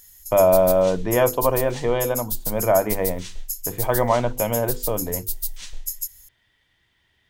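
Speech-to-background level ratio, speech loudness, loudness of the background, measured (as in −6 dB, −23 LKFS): 7.0 dB, −21.5 LKFS, −28.5 LKFS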